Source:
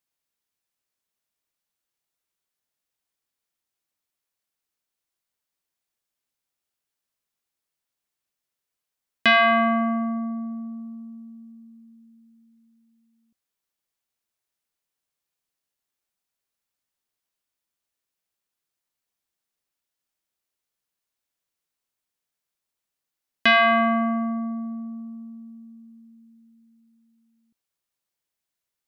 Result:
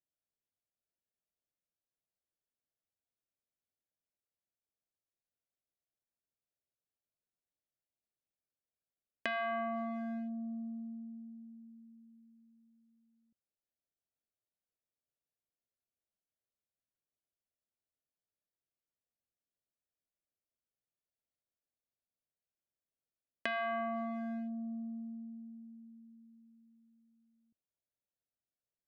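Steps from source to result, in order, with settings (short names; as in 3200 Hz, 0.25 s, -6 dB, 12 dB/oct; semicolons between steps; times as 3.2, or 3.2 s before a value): Wiener smoothing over 41 samples; high shelf 4400 Hz -7 dB; compressor 16:1, threshold -31 dBFS, peak gain reduction 16 dB; fifteen-band EQ 100 Hz +4 dB, 630 Hz +7 dB, 1600 Hz +4 dB; gain -7 dB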